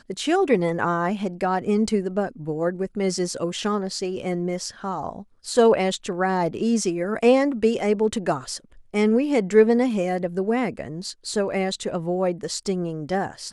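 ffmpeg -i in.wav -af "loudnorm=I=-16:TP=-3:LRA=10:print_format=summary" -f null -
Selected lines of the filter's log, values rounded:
Input Integrated:    -23.8 LUFS
Input True Peak:      -5.1 dBTP
Input LRA:             5.2 LU
Input Threshold:     -33.9 LUFS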